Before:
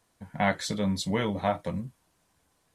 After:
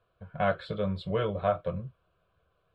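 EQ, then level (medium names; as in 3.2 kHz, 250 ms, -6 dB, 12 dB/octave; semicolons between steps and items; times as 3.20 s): low-pass 2.1 kHz 12 dB/octave; static phaser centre 1.3 kHz, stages 8; +3.0 dB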